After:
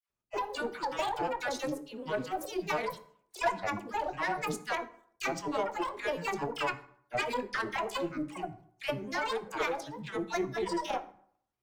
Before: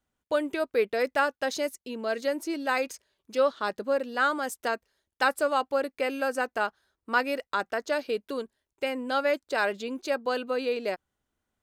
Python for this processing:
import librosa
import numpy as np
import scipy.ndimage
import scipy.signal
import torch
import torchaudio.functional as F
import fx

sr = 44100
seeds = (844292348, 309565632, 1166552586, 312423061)

y = fx.hum_notches(x, sr, base_hz=60, count=7)
y = fx.level_steps(y, sr, step_db=10)
y = fx.dispersion(y, sr, late='lows', ms=93.0, hz=640.0)
y = fx.quant_float(y, sr, bits=6)
y = fx.granulator(y, sr, seeds[0], grain_ms=100.0, per_s=20.0, spray_ms=21.0, spread_st=12)
y = fx.cheby_harmonics(y, sr, harmonics=(4,), levels_db=(-20,), full_scale_db=-20.5)
y = fx.rev_fdn(y, sr, rt60_s=0.62, lf_ratio=1.1, hf_ratio=0.65, size_ms=48.0, drr_db=8.5)